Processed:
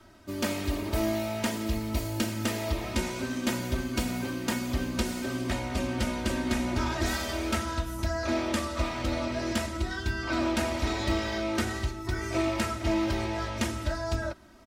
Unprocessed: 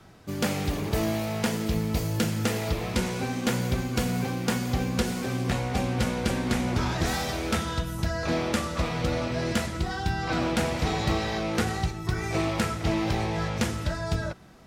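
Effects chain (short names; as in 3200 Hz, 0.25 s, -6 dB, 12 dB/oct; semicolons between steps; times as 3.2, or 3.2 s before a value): comb 3.2 ms, depth 95%; gain -4.5 dB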